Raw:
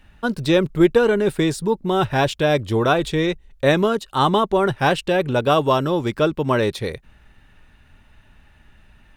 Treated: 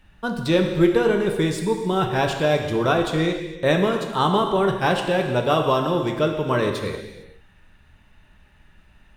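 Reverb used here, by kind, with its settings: gated-style reverb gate 480 ms falling, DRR 3 dB; trim -3.5 dB

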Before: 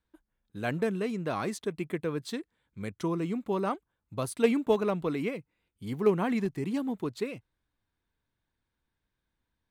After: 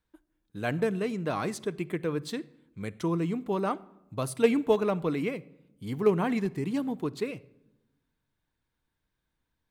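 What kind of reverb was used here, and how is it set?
simulated room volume 3200 m³, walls furnished, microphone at 0.47 m; trim +1 dB

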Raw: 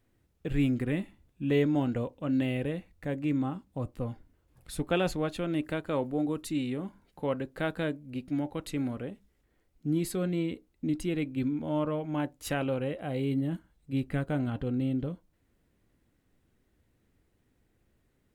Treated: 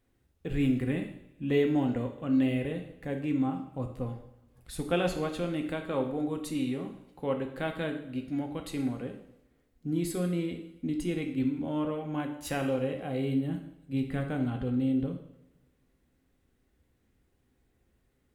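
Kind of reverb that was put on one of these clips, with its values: two-slope reverb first 0.72 s, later 2.1 s, from -23 dB, DRR 4 dB; trim -2 dB

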